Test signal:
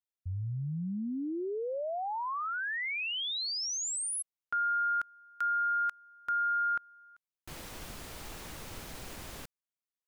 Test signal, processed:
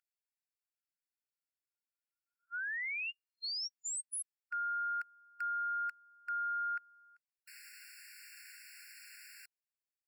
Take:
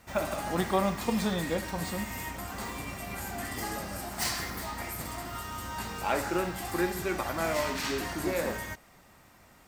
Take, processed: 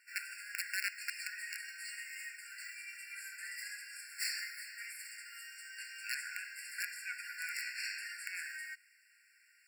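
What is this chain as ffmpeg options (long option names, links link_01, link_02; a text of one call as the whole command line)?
ffmpeg -i in.wav -af "aeval=exprs='val(0)+0.00708*(sin(2*PI*50*n/s)+sin(2*PI*2*50*n/s)/2+sin(2*PI*3*50*n/s)/3+sin(2*PI*4*50*n/s)/4+sin(2*PI*5*50*n/s)/5)':channel_layout=same,aeval=exprs='(mod(7.94*val(0)+1,2)-1)/7.94':channel_layout=same,afftfilt=real='re*eq(mod(floor(b*sr/1024/1400),2),1)':imag='im*eq(mod(floor(b*sr/1024/1400),2),1)':win_size=1024:overlap=0.75,volume=-3.5dB" out.wav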